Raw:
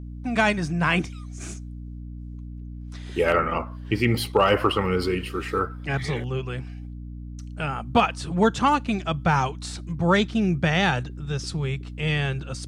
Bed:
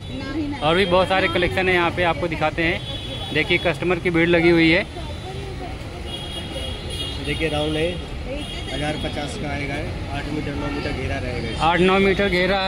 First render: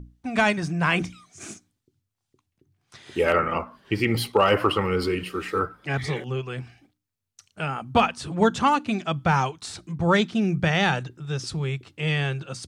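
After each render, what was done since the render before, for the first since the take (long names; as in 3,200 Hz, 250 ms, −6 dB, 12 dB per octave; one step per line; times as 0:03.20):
mains-hum notches 60/120/180/240/300 Hz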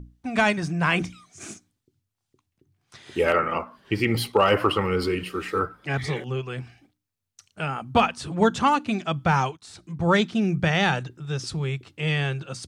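0:03.31–0:03.78: low-shelf EQ 120 Hz −9 dB
0:09.57–0:10.08: fade in, from −14.5 dB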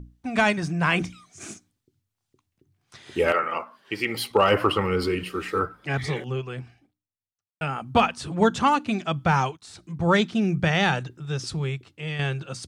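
0:03.32–0:04.31: high-pass filter 600 Hz 6 dB per octave
0:06.21–0:07.61: fade out and dull
0:11.66–0:12.19: fade out quadratic, to −7 dB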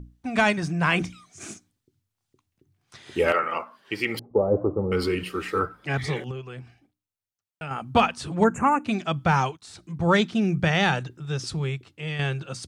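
0:04.19–0:04.92: inverse Chebyshev low-pass filter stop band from 2,900 Hz, stop band 70 dB
0:06.31–0:07.71: downward compressor 1.5 to 1, threshold −42 dBFS
0:08.44–0:08.85: elliptic band-stop filter 2,400–6,900 Hz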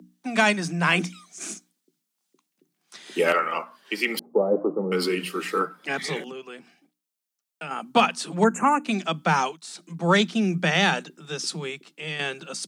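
Butterworth high-pass 160 Hz 96 dB per octave
high-shelf EQ 3,600 Hz +8 dB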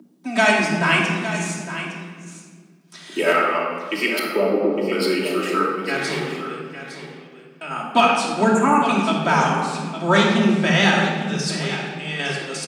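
on a send: single-tap delay 860 ms −11.5 dB
on the sum: rectangular room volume 2,100 cubic metres, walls mixed, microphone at 2.8 metres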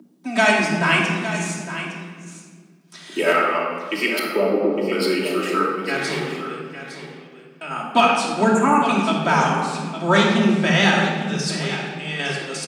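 no processing that can be heard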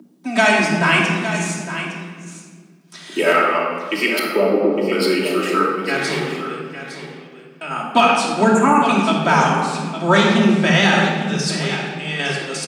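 level +3 dB
brickwall limiter −3 dBFS, peak gain reduction 3 dB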